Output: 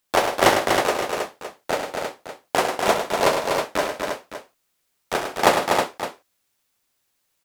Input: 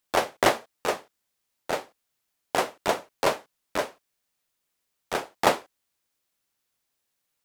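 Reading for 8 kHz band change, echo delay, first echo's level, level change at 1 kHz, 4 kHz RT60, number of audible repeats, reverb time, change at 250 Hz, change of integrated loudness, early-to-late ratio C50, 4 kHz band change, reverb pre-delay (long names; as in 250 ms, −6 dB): +7.0 dB, 65 ms, −11.0 dB, +7.0 dB, no reverb audible, 6, no reverb audible, +6.5 dB, +5.5 dB, no reverb audible, +7.0 dB, no reverb audible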